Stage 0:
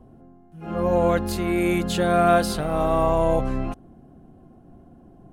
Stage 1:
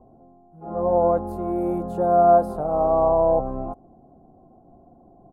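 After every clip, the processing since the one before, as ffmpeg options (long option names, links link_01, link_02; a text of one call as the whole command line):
ffmpeg -i in.wav -af "firequalizer=gain_entry='entry(140,0);entry(740,12);entry(1300,-2);entry(1800,-19);entry(3100,-26);entry(11000,-11)':delay=0.05:min_phase=1,volume=-6.5dB" out.wav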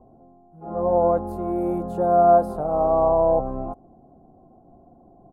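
ffmpeg -i in.wav -af anull out.wav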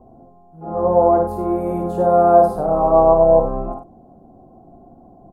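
ffmpeg -i in.wav -af "aecho=1:1:55.39|96.21:0.562|0.316,volume=4.5dB" out.wav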